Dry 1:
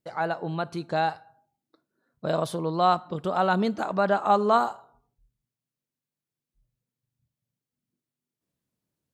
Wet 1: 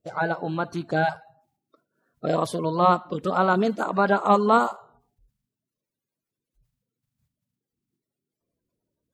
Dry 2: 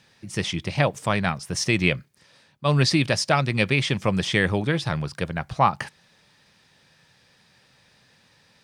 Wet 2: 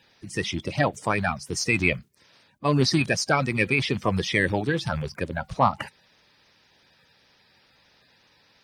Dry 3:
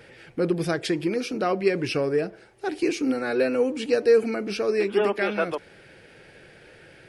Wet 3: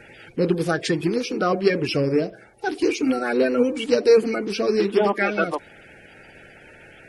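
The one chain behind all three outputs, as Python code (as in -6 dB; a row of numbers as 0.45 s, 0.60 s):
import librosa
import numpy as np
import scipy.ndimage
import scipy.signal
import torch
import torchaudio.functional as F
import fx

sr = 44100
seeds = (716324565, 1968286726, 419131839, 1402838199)

y = fx.spec_quant(x, sr, step_db=30)
y = y * 10.0 ** (-6 / 20.0) / np.max(np.abs(y))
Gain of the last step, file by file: +3.0 dB, -1.0 dB, +4.0 dB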